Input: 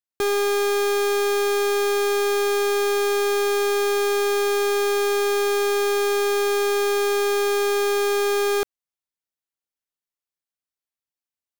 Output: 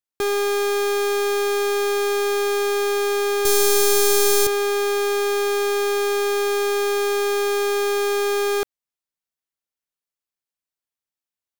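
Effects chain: 3.45–4.47 tone controls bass +14 dB, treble +14 dB

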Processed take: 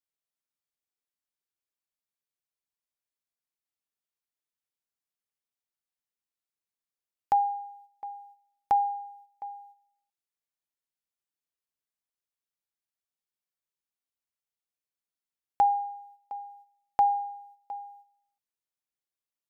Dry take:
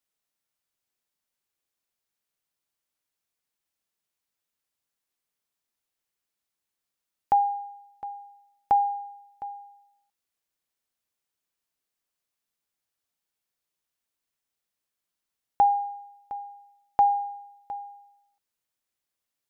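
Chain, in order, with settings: gate -51 dBFS, range -8 dB; gain -2.5 dB

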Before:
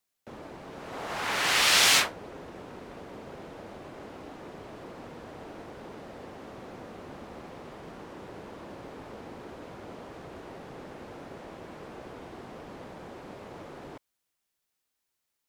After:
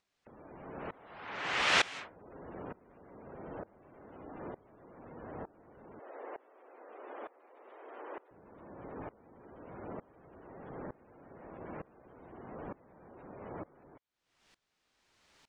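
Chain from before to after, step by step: 5.99–8.31 HPF 380 Hz 24 dB/oct; spectral gate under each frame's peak -20 dB strong; dynamic EQ 4600 Hz, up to -7 dB, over -47 dBFS, Q 1.3; upward compressor, threshold -37 dBFS; air absorption 120 m; dB-ramp tremolo swelling 1.1 Hz, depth 23 dB; gain +1.5 dB

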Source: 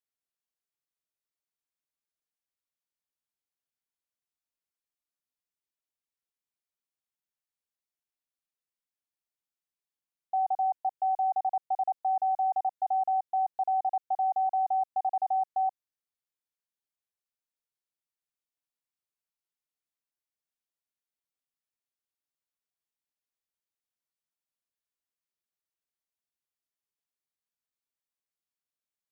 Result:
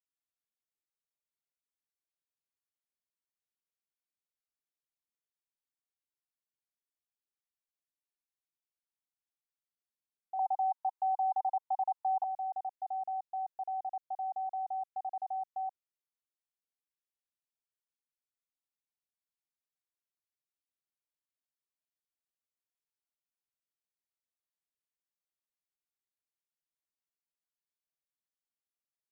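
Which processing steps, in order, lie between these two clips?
10.39–12.24 resonant high-pass 920 Hz, resonance Q 4.9; gain -9 dB

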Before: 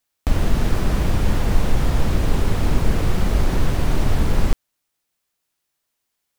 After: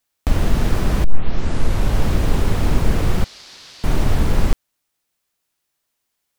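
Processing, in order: 1.04 tape start 1.03 s; 3.24–3.84 band-pass 4600 Hz, Q 2.4; gain +1.5 dB

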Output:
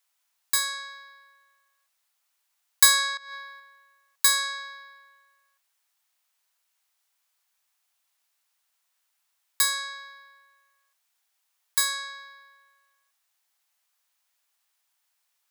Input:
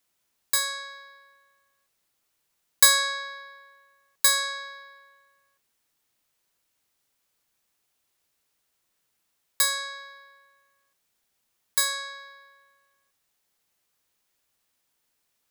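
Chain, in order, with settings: HPF 700 Hz 24 dB/oct; 3.17–3.6 negative-ratio compressor -40 dBFS, ratio -0.5

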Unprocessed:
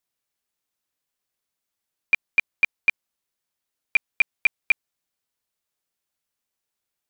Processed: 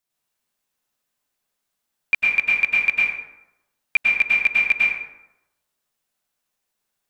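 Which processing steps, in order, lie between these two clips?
plate-style reverb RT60 0.9 s, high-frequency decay 0.55×, pre-delay 90 ms, DRR -5 dB

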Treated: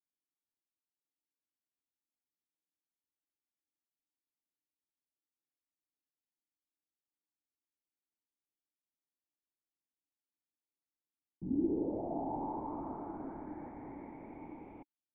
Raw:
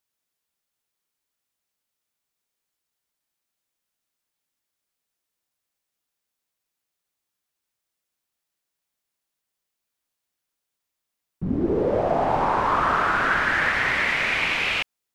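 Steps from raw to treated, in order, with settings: dynamic EQ 670 Hz, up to +5 dB, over -39 dBFS, Q 6.2; vocal tract filter u; gain -4 dB

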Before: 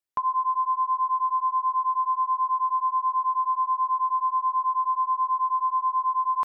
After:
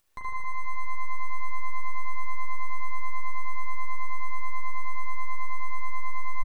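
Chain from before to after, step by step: upward compressor, threshold -41 dBFS; half-wave rectifier; early reflections 11 ms -6.5 dB, 74 ms -6.5 dB; spring tank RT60 3.2 s, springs 38 ms, chirp 60 ms, DRR -3.5 dB; gain -9 dB

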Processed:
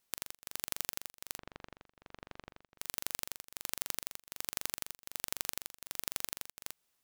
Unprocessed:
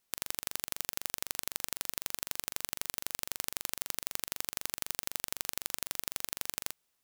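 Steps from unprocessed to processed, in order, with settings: 1.38–2.78 tape spacing loss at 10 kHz 41 dB; beating tremolo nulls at 1.3 Hz

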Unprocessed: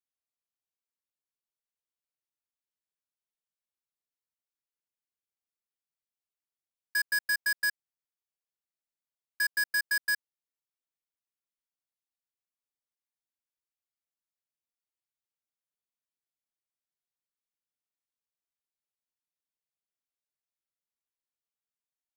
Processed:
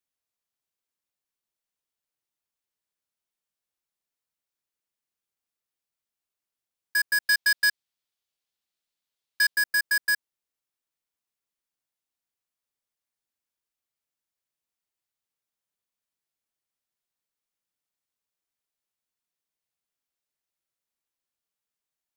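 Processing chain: 7.22–9.55 bell 3700 Hz +8 dB 1.2 oct; gain +4.5 dB

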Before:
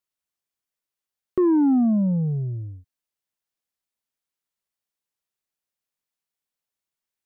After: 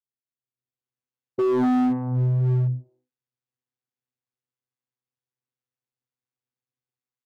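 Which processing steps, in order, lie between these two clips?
tracing distortion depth 0.18 ms; vocoder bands 16, saw 126 Hz; AGC gain up to 9 dB; bands offset in time lows, highs 0.25 s, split 610 Hz; overloaded stage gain 14.5 dB; gain -4 dB

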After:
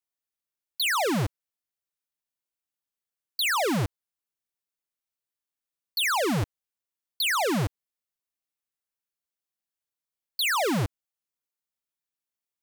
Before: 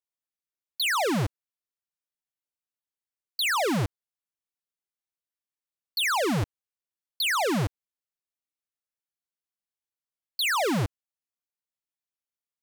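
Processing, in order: high shelf 11000 Hz +4 dB

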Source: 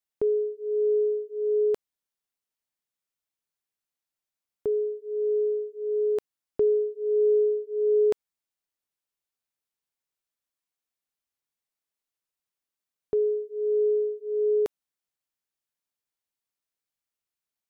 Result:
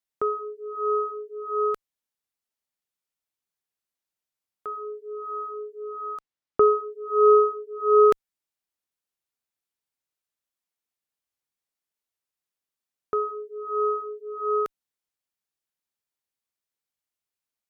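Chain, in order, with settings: 5.95–6.84 air absorption 81 m; added harmonics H 3 -6 dB, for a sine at -17 dBFS; gain +5.5 dB

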